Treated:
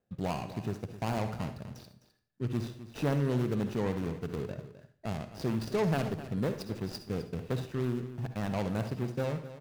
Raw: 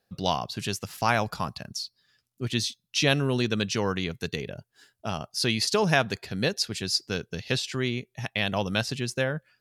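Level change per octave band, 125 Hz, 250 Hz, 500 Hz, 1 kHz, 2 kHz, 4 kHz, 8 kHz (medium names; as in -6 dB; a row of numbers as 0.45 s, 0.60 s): -2.0 dB, -2.5 dB, -5.0 dB, -9.0 dB, -14.5 dB, -19.0 dB, -17.5 dB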